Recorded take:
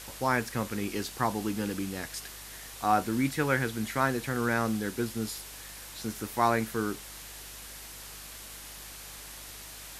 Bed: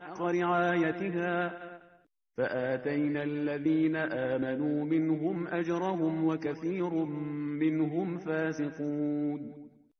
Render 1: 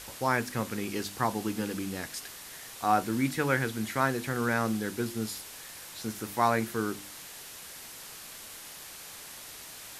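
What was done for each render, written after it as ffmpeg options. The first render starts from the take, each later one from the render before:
-af "bandreject=f=50:t=h:w=4,bandreject=f=100:t=h:w=4,bandreject=f=150:t=h:w=4,bandreject=f=200:t=h:w=4,bandreject=f=250:t=h:w=4,bandreject=f=300:t=h:w=4,bandreject=f=350:t=h:w=4"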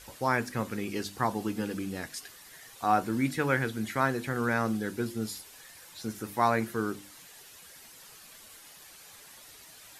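-af "afftdn=nr=9:nf=-46"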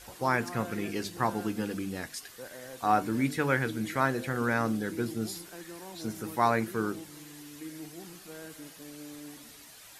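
-filter_complex "[1:a]volume=0.188[s0];[0:a][s0]amix=inputs=2:normalize=0"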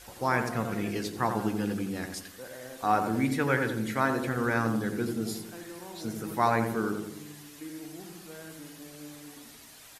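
-filter_complex "[0:a]asplit=2[s0][s1];[s1]adelay=87,lowpass=f=1100:p=1,volume=0.596,asplit=2[s2][s3];[s3]adelay=87,lowpass=f=1100:p=1,volume=0.55,asplit=2[s4][s5];[s5]adelay=87,lowpass=f=1100:p=1,volume=0.55,asplit=2[s6][s7];[s7]adelay=87,lowpass=f=1100:p=1,volume=0.55,asplit=2[s8][s9];[s9]adelay=87,lowpass=f=1100:p=1,volume=0.55,asplit=2[s10][s11];[s11]adelay=87,lowpass=f=1100:p=1,volume=0.55,asplit=2[s12][s13];[s13]adelay=87,lowpass=f=1100:p=1,volume=0.55[s14];[s0][s2][s4][s6][s8][s10][s12][s14]amix=inputs=8:normalize=0"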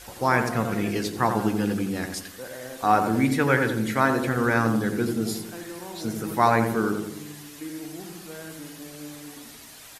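-af "volume=1.88"

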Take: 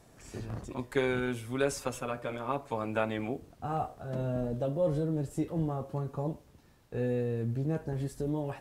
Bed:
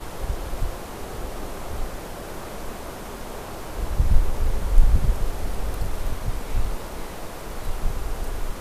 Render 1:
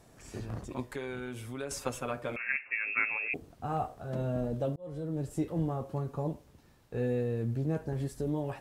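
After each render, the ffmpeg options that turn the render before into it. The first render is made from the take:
-filter_complex "[0:a]asettb=1/sr,asplit=3[s0][s1][s2];[s0]atrim=end=0.874[s3];[s1]atrim=start=0.87:end=1.71,asetpts=PTS-STARTPTS,afade=t=in:d=0.004:c=qsin,afade=t=out:st=0.836:d=0.004:c=qsin,acompressor=threshold=0.0126:ratio=2.5:attack=3.2:release=140:knee=1:detection=peak[s4];[s2]atrim=start=1.706[s5];[s3][s4]acrossfade=d=0.004:c1=hsin:c2=qsin[s6];[s6][s5]acrossfade=d=0.004:c1=qsin:c2=hsin,asettb=1/sr,asplit=3[s7][s8][s9];[s7]atrim=end=2.364[s10];[s8]atrim=start=2.36:end=3.34,asetpts=PTS-STARTPTS,afade=t=in:d=0.004:c=qsin,afade=t=out:st=0.976:d=0.004:c=qsin,lowpass=f=2400:t=q:w=0.5098,lowpass=f=2400:t=q:w=0.6013,lowpass=f=2400:t=q:w=0.9,lowpass=f=2400:t=q:w=2.563,afreqshift=-2800[s11];[s9]atrim=start=3.336[s12];[s10][s11]acrossfade=d=0.004:c1=hsin:c2=qsin[s13];[s13][s12]acrossfade=d=0.004:c1=qsin:c2=hsin,asplit=2[s14][s15];[s14]atrim=end=4.76,asetpts=PTS-STARTPTS,afade=t=out:st=4.756:d=0.004:c=hsin[s16];[s15]atrim=start=4.76,asetpts=PTS-STARTPTS,afade=t=in:d=0.54[s17];[s16][s17]concat=n=2:v=0:a=1"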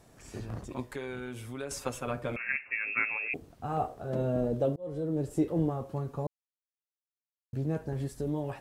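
-filter_complex "[0:a]asettb=1/sr,asplit=3[s0][s1][s2];[s0]atrim=end=2.074[s3];[s1]atrim=start=2.07:end=3.03,asetpts=PTS-STARTPTS,afade=t=in:d=0.004:c=qsin,afade=t=out:st=0.956:d=0.004:c=qsin,lowshelf=f=230:g=7.5[s4];[s2]atrim=start=3.026[s5];[s3][s4]acrossfade=d=0.004:c1=hsin:c2=qsin[s6];[s6][s5]acrossfade=d=0.004:c1=qsin:c2=hsin,asettb=1/sr,asplit=3[s7][s8][s9];[s7]atrim=end=3.774[s10];[s8]atrim=start=3.77:end=5.7,asetpts=PTS-STARTPTS,afade=t=in:d=0.004:c=qsin,afade=t=out:st=1.926:d=0.004:c=qsin,equalizer=f=410:w=1:g=6.5[s11];[s9]atrim=start=5.696[s12];[s10][s11]acrossfade=d=0.004:c1=hsin:c2=qsin[s13];[s13][s12]acrossfade=d=0.004:c1=qsin:c2=hsin,asplit=3[s14][s15][s16];[s14]atrim=end=6.27,asetpts=PTS-STARTPTS,afade=t=out:st=6.266:d=0.004:c=hsin[s17];[s15]atrim=start=6.27:end=7.53,asetpts=PTS-STARTPTS,volume=0[s18];[s16]atrim=start=7.53,asetpts=PTS-STARTPTS,afade=t=in:d=0.004:c=hsin[s19];[s17][s18][s19]concat=n=3:v=0:a=1"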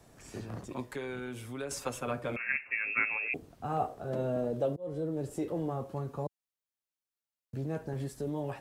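-filter_complex "[0:a]acrossover=split=100|470|4000[s0][s1][s2][s3];[s0]acompressor=threshold=0.00126:ratio=6[s4];[s1]alimiter=level_in=2.11:limit=0.0631:level=0:latency=1,volume=0.473[s5];[s4][s5][s2][s3]amix=inputs=4:normalize=0"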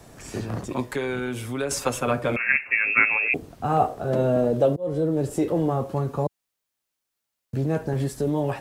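-af "volume=3.55"

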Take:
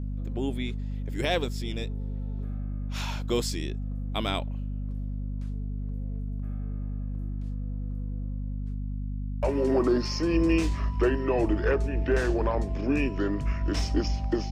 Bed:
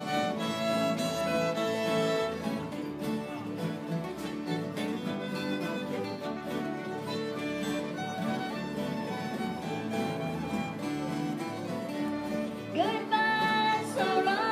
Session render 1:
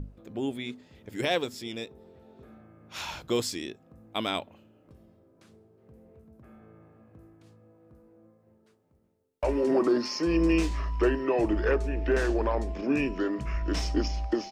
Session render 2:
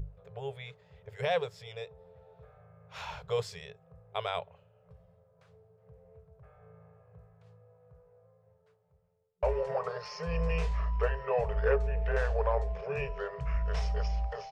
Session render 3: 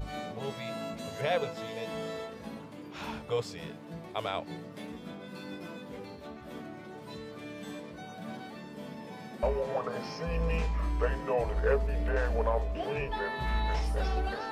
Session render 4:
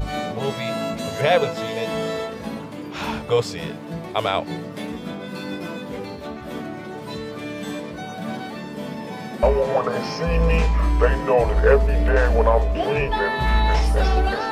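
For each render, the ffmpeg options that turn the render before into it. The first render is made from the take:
-af "bandreject=f=50:t=h:w=6,bandreject=f=100:t=h:w=6,bandreject=f=150:t=h:w=6,bandreject=f=200:t=h:w=6,bandreject=f=250:t=h:w=6"
-af "lowpass=f=1400:p=1,afftfilt=real='re*(1-between(b*sr/4096,180,400))':imag='im*(1-between(b*sr/4096,180,400))':win_size=4096:overlap=0.75"
-filter_complex "[1:a]volume=0.335[s0];[0:a][s0]amix=inputs=2:normalize=0"
-af "volume=3.98"

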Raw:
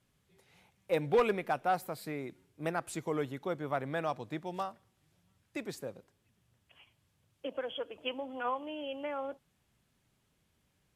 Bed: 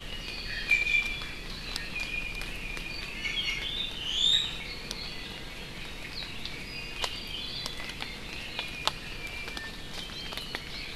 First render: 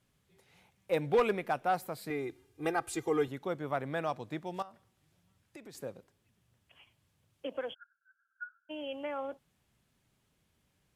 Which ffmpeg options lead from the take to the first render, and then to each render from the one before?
-filter_complex "[0:a]asettb=1/sr,asplit=3[s0][s1][s2];[s0]atrim=end=2.104[s3];[s1]atrim=start=2.1:end=3.28,asetpts=PTS-STARTPTS,afade=t=in:d=0.004:c=qsin,afade=t=out:st=1.176:d=0.004:c=qsin,aecho=1:1:2.5:0.95,atrim=end_sample=52038[s4];[s2]atrim=start=3.276[s5];[s3][s4]acrossfade=d=0.004:c1=hsin:c2=qsin[s6];[s6][s5]acrossfade=d=0.004:c1=qsin:c2=hsin,asettb=1/sr,asplit=3[s7][s8][s9];[s7]atrim=end=4.624[s10];[s8]atrim=start=4.62:end=5.75,asetpts=PTS-STARTPTS,afade=t=in:d=0.004:c=qsin,afade=t=out:st=1.126:d=0.004:c=qsin,acompressor=threshold=0.00501:ratio=6:attack=3.2:release=140:knee=1:detection=peak[s11];[s9]atrim=start=5.746[s12];[s10][s11]acrossfade=d=0.004:c1=hsin:c2=qsin[s13];[s13][s12]acrossfade=d=0.004:c1=qsin:c2=hsin,asplit=3[s14][s15][s16];[s14]afade=t=out:st=7.73:d=0.02[s17];[s15]asuperpass=centerf=1500:order=12:qfactor=5.2,afade=t=in:st=7.73:d=0.02,afade=t=out:st=8.69:d=0.02[s18];[s16]afade=t=in:st=8.69:d=0.02[s19];[s17][s18][s19]amix=inputs=3:normalize=0"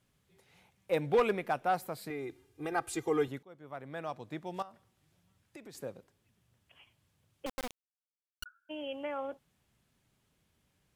-filter_complex "[0:a]asettb=1/sr,asplit=3[s0][s1][s2];[s0]atrim=end=2.074[s3];[s1]atrim=start=2.07:end=2.72,asetpts=PTS-STARTPTS,afade=t=in:d=0.004:c=qsin,afade=t=out:st=0.646:d=0.004:c=qsin,acompressor=threshold=0.0141:ratio=2:attack=3.2:release=140:knee=1:detection=peak[s4];[s2]atrim=start=2.716[s5];[s3][s4]acrossfade=d=0.004:c1=hsin:c2=qsin[s6];[s6][s5]acrossfade=d=0.004:c1=qsin:c2=hsin,asettb=1/sr,asplit=3[s7][s8][s9];[s7]atrim=end=7.464[s10];[s8]atrim=start=7.46:end=8.46,asetpts=PTS-STARTPTS,afade=t=in:d=0.004:c=qsin,afade=t=out:st=0.996:d=0.004:c=qsin,acrusher=bits=3:dc=4:mix=0:aa=0.000001[s11];[s9]atrim=start=8.456[s12];[s10][s11]acrossfade=d=0.004:c1=hsin:c2=qsin[s13];[s13][s12]acrossfade=d=0.004:c1=qsin:c2=hsin,asplit=2[s14][s15];[s14]atrim=end=3.43,asetpts=PTS-STARTPTS,afade=t=out:st=3.426:d=0.004:c=hsin:silence=0.0630957[s16];[s15]atrim=start=3.43,asetpts=PTS-STARTPTS,afade=t=in:d=1.21:silence=0.0630957[s17];[s16][s17]concat=n=2:v=0:a=1"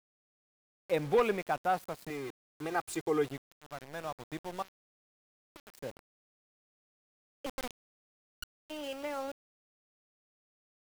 -af "aeval=exprs='val(0)*gte(abs(val(0)),0.0075)':c=same"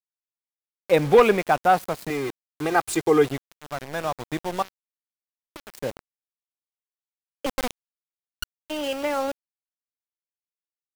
-af "volume=3.98"

